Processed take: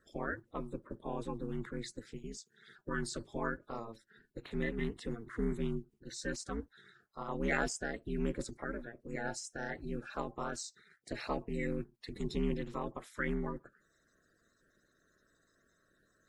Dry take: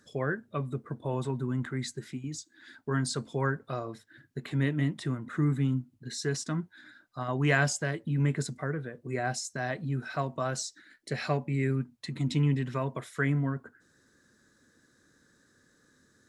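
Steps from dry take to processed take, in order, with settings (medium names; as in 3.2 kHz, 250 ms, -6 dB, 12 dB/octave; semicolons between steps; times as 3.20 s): coarse spectral quantiser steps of 30 dB; ring modulator 110 Hz; trim -4 dB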